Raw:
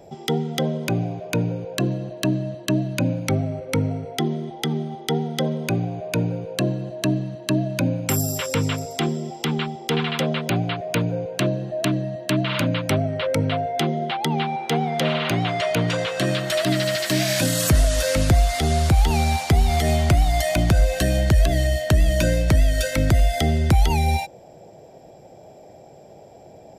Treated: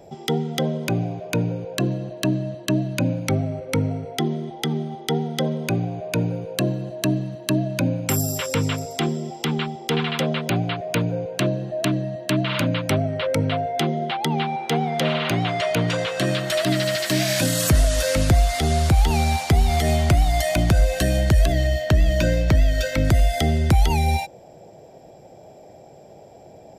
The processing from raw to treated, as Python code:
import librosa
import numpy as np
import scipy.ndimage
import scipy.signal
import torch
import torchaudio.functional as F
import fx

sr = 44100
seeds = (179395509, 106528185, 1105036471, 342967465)

y = fx.high_shelf(x, sr, hz=12000.0, db=10.0, at=(6.21, 7.57))
y = fx.peak_eq(y, sr, hz=10000.0, db=-13.0, octaves=0.7, at=(21.52, 23.05))